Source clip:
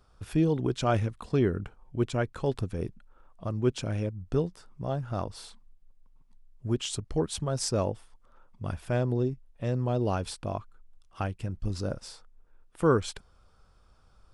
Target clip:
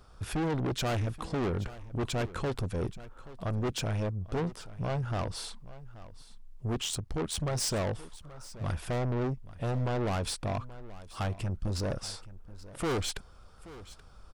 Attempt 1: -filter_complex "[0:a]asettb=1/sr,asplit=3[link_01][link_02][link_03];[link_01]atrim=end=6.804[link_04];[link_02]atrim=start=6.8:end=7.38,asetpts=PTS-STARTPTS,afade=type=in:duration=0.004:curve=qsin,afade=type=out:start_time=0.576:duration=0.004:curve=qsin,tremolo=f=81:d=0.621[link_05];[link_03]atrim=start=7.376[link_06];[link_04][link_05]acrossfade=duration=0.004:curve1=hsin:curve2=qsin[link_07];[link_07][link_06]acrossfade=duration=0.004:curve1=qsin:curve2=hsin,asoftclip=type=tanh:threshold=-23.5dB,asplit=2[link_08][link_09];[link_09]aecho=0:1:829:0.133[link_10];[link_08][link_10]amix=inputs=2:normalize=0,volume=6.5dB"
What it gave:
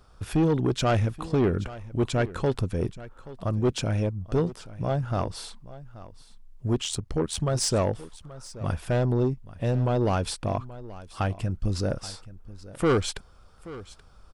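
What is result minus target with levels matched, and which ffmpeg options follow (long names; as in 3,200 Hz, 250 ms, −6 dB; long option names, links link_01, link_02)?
soft clipping: distortion −8 dB
-filter_complex "[0:a]asettb=1/sr,asplit=3[link_01][link_02][link_03];[link_01]atrim=end=6.804[link_04];[link_02]atrim=start=6.8:end=7.38,asetpts=PTS-STARTPTS,afade=type=in:duration=0.004:curve=qsin,afade=type=out:start_time=0.576:duration=0.004:curve=qsin,tremolo=f=81:d=0.621[link_05];[link_03]atrim=start=7.376[link_06];[link_04][link_05]acrossfade=duration=0.004:curve1=hsin:curve2=qsin[link_07];[link_07][link_06]acrossfade=duration=0.004:curve1=qsin:curve2=hsin,asoftclip=type=tanh:threshold=-34.5dB,asplit=2[link_08][link_09];[link_09]aecho=0:1:829:0.133[link_10];[link_08][link_10]amix=inputs=2:normalize=0,volume=6.5dB"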